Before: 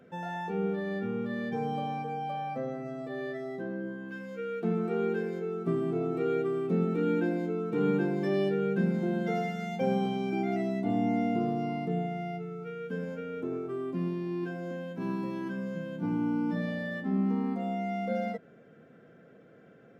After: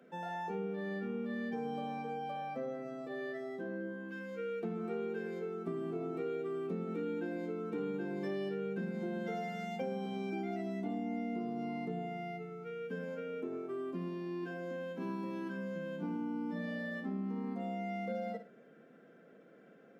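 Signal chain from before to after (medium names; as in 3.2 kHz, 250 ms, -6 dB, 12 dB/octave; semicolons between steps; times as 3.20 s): high-pass 180 Hz 24 dB/octave; flutter echo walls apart 9.5 m, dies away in 0.3 s; compression, threshold -31 dBFS, peak gain reduction 8 dB; trim -3.5 dB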